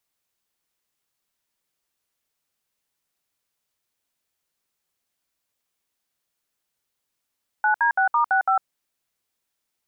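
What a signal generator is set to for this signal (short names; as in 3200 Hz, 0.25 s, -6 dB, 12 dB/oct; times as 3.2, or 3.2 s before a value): DTMF "9D6*65", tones 0.103 s, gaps 64 ms, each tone -19 dBFS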